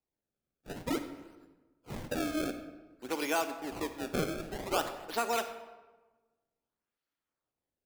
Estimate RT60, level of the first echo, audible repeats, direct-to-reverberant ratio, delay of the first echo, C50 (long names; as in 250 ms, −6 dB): 1.2 s, no echo audible, no echo audible, 8.5 dB, no echo audible, 9.5 dB